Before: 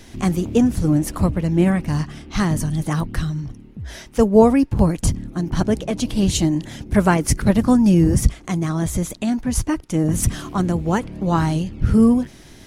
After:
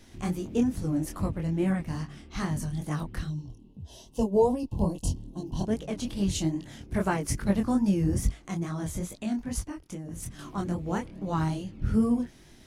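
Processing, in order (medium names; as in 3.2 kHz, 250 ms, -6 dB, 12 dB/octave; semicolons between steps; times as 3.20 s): 3.28–5.67 s: time-frequency box 1.1–2.6 kHz -20 dB; 9.59–10.39 s: compression 6:1, threshold -24 dBFS, peak gain reduction 12 dB; chorus 2.4 Hz, delay 20 ms, depth 5.4 ms; trim -7.5 dB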